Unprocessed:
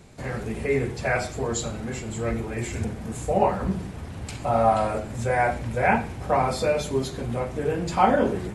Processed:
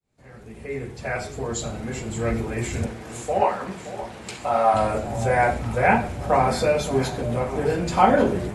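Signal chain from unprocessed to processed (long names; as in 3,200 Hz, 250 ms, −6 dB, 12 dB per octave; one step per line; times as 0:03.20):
fade in at the beginning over 2.30 s
0:02.86–0:04.74: meter weighting curve A
delay that swaps between a low-pass and a high-pass 571 ms, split 860 Hz, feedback 73%, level −12 dB
level +2.5 dB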